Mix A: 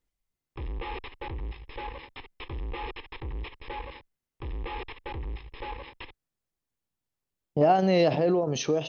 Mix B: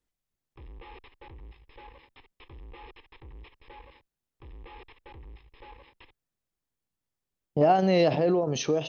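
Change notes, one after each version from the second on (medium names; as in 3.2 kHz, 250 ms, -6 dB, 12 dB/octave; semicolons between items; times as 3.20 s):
background -11.5 dB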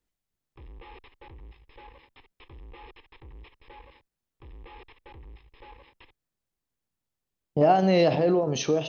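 speech: send +8.0 dB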